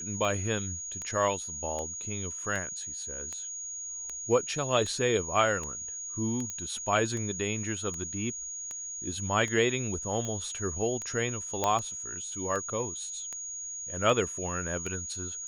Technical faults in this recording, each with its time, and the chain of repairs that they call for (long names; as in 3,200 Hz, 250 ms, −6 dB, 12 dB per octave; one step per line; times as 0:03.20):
scratch tick 78 rpm −23 dBFS
whistle 6,700 Hz −36 dBFS
0:06.50: click −21 dBFS
0:11.64: click −12 dBFS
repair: click removal
notch filter 6,700 Hz, Q 30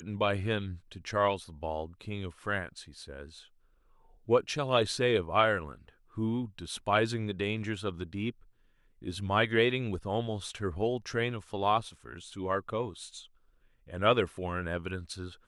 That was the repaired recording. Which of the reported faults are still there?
0:11.64: click